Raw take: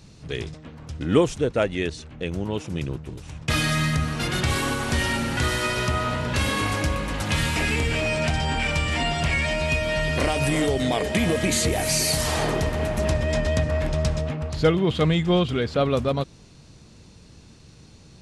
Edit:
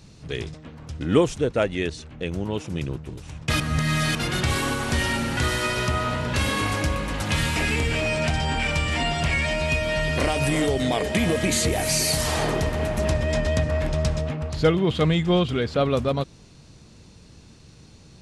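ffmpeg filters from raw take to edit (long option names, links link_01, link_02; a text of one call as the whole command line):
ffmpeg -i in.wav -filter_complex "[0:a]asplit=3[link_01][link_02][link_03];[link_01]atrim=end=3.602[link_04];[link_02]atrim=start=3.598:end=4.152,asetpts=PTS-STARTPTS,areverse[link_05];[link_03]atrim=start=4.148[link_06];[link_04][link_05]acrossfade=duration=0.004:curve1=hsin:curve2=hsin[link_07];[link_07][link_06]acrossfade=duration=0.004:curve1=hsin:curve2=hsin" out.wav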